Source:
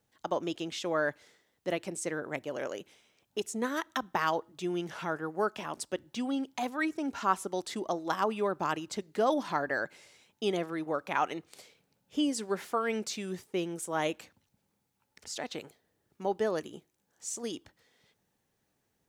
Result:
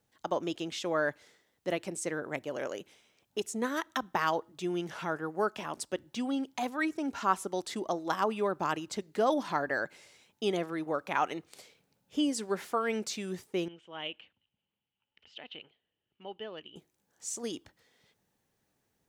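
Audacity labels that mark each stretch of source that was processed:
13.680000	16.760000	transistor ladder low-pass 3,100 Hz, resonance 85%

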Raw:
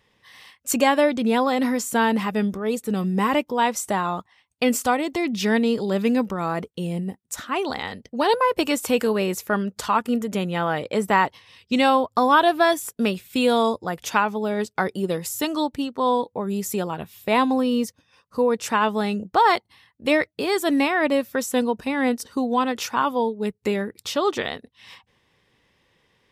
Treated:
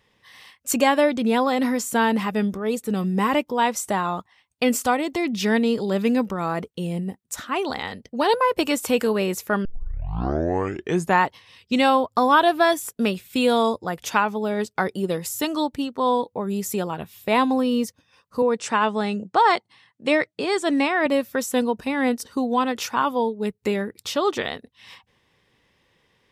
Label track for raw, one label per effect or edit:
9.650000	9.650000	tape start 1.60 s
18.420000	21.060000	elliptic band-pass filter 120–8,700 Hz

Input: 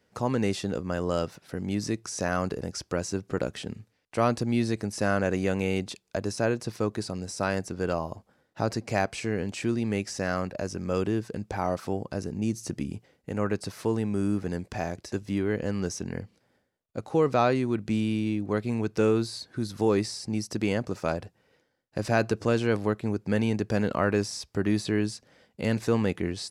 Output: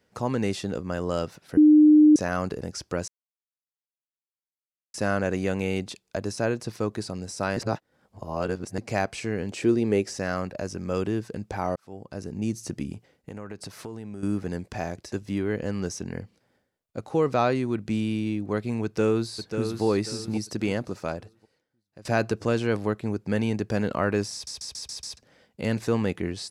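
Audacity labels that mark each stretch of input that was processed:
1.570000	2.160000	beep over 303 Hz −11 dBFS
3.080000	4.940000	silence
7.570000	8.780000	reverse
9.510000	10.150000	parametric band 410 Hz +10 dB 0.98 octaves
11.760000	12.400000	fade in
12.940000	14.230000	downward compressor 5 to 1, threshold −34 dBFS
18.840000	19.830000	delay throw 540 ms, feedback 35%, level −7 dB
20.690000	22.050000	fade out, to −20.5 dB
24.330000	24.330000	stutter in place 0.14 s, 6 plays

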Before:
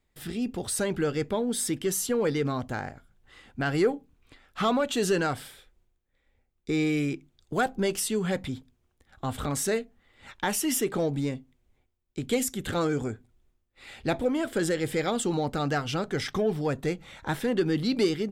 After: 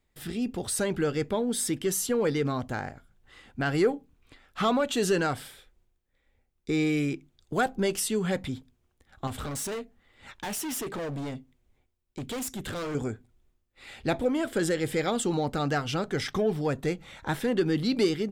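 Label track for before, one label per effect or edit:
9.270000	12.950000	hard clipping −31.5 dBFS

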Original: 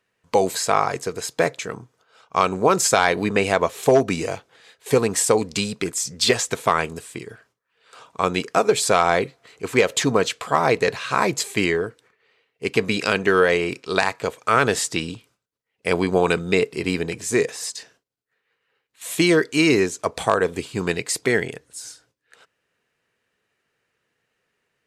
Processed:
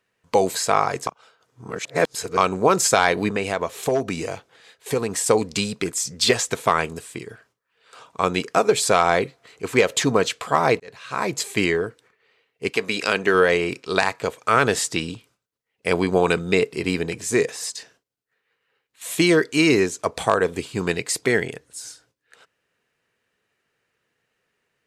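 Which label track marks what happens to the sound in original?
1.070000	2.370000	reverse
3.290000	5.260000	downward compressor 1.5 to 1, threshold −27 dBFS
10.800000	11.520000	fade in
12.690000	13.330000	high-pass filter 660 Hz → 170 Hz 6 dB per octave

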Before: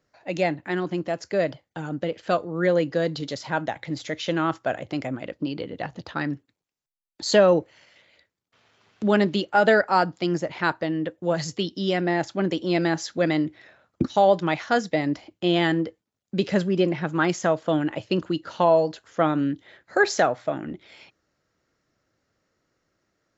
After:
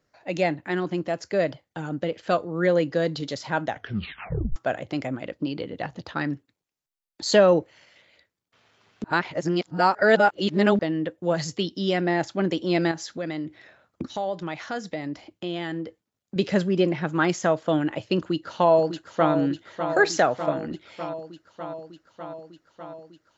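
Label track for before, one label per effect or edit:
3.700000	3.700000	tape stop 0.86 s
9.040000	10.790000	reverse
12.910000	16.360000	downward compressor 2 to 1, threshold −33 dBFS
18.180000	19.330000	delay throw 600 ms, feedback 75%, level −9 dB

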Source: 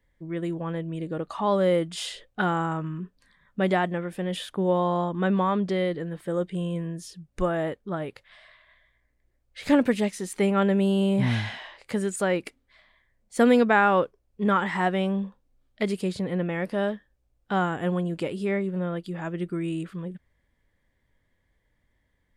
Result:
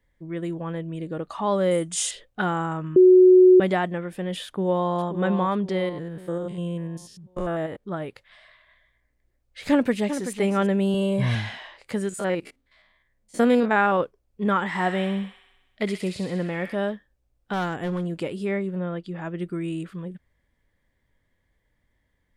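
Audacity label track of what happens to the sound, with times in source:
1.710000	2.110000	flat-topped bell 7,700 Hz +13.5 dB 1 octave
2.960000	3.600000	beep over 368 Hz −9 dBFS
4.450000	4.930000	delay throw 530 ms, feedback 45%, level −8.5 dB
5.890000	7.840000	spectrum averaged block by block every 100 ms
9.710000	10.280000	delay throw 380 ms, feedback 10%, level −9.5 dB
10.940000	11.350000	comb filter 1.8 ms
12.090000	14.010000	spectrum averaged block by block every 50 ms
14.650000	16.750000	delay with a high-pass on its return 64 ms, feedback 67%, high-pass 1,700 Hz, level −4.5 dB
17.530000	18.210000	hard clipping −22.5 dBFS
18.750000	19.390000	high-frequency loss of the air 71 metres

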